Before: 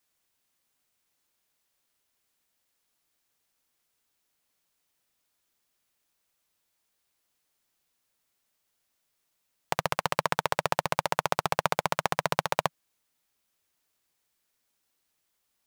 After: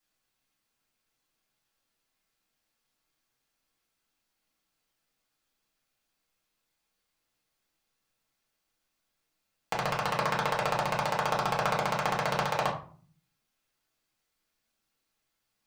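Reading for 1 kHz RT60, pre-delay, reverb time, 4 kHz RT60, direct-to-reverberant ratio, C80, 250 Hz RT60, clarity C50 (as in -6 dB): 0.45 s, 4 ms, 0.45 s, 0.30 s, -5.0 dB, 13.0 dB, 0.75 s, 8.5 dB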